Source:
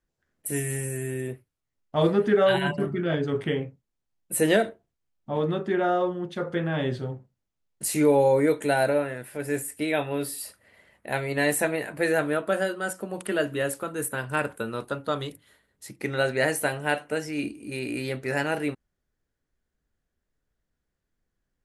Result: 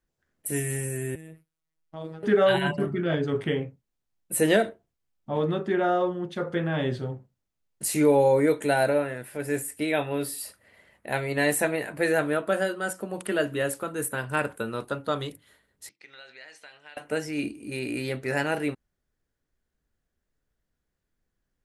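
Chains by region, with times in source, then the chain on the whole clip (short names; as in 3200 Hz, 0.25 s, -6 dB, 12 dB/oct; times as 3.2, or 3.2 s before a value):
1.15–2.23 compressor 3:1, threshold -38 dBFS + robotiser 160 Hz
15.89–16.97 LPF 4600 Hz 24 dB/oct + differentiator + compressor 3:1, threshold -44 dBFS
whole clip: dry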